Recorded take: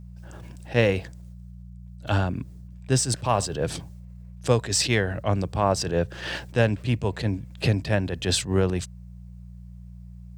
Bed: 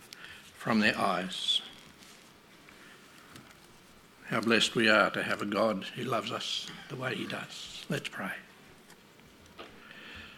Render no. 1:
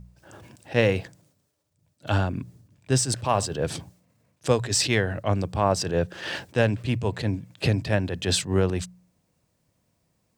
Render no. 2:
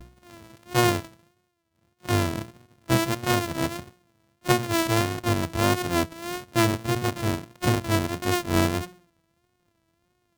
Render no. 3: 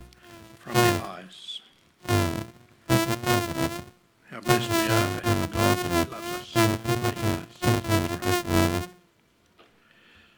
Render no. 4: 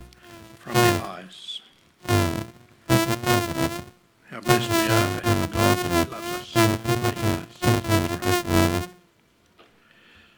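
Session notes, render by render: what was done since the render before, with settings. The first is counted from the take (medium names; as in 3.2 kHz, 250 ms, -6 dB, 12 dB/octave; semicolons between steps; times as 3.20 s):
de-hum 60 Hz, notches 3
sorted samples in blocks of 128 samples; vibrato 1.6 Hz 77 cents
add bed -8.5 dB
trim +2.5 dB; peak limiter -3 dBFS, peak gain reduction 1.5 dB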